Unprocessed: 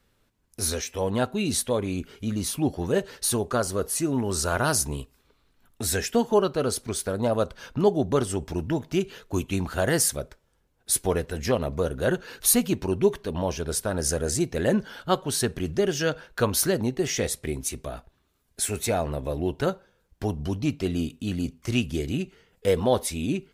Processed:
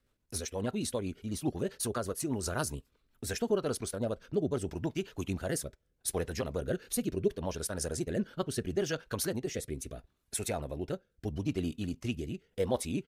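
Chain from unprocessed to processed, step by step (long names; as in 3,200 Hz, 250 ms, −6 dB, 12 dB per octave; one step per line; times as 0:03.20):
tempo change 1.8×
rotating-speaker cabinet horn 8 Hz, later 0.75 Hz, at 0:02.81
level −6 dB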